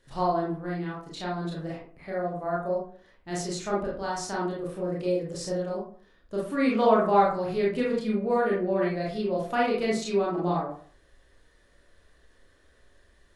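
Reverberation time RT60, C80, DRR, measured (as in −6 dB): 0.50 s, 8.5 dB, −5.0 dB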